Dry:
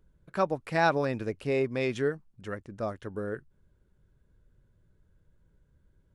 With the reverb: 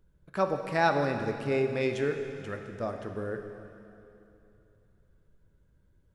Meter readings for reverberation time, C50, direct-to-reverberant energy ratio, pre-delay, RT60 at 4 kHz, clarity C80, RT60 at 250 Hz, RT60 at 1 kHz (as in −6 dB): 2.9 s, 6.5 dB, 5.0 dB, 7 ms, 2.7 s, 7.0 dB, 2.9 s, 2.9 s